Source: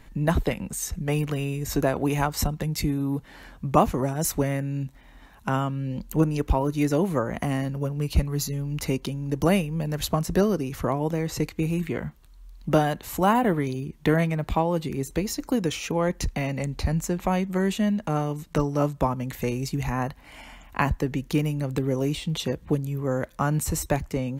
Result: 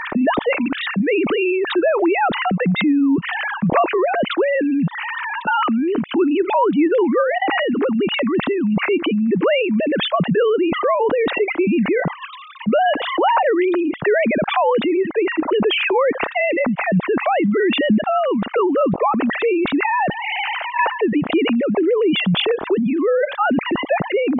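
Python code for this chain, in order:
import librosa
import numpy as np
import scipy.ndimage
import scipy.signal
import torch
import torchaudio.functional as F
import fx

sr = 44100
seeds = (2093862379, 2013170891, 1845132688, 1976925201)

y = fx.sine_speech(x, sr)
y = fx.env_flatten(y, sr, amount_pct=70)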